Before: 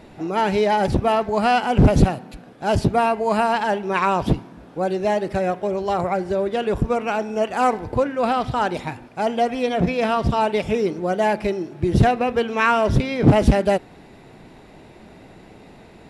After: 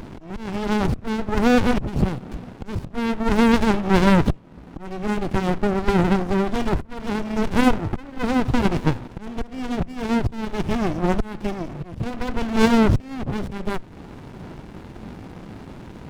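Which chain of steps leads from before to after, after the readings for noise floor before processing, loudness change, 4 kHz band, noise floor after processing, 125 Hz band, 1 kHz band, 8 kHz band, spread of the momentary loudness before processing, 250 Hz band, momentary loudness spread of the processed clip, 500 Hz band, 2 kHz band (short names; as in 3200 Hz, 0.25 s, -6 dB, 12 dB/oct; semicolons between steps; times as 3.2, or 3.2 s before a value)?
-46 dBFS, -2.0 dB, -1.0 dB, -41 dBFS, -2.0 dB, -6.5 dB, 0.0 dB, 8 LU, +2.5 dB, 21 LU, -5.0 dB, -2.0 dB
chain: auto swell 0.652 s; in parallel at 0 dB: compressor, threshold -31 dBFS, peak gain reduction 16.5 dB; on the sum: small resonant body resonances 1000/2600 Hz, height 10 dB, ringing for 25 ms; running maximum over 65 samples; gain +3 dB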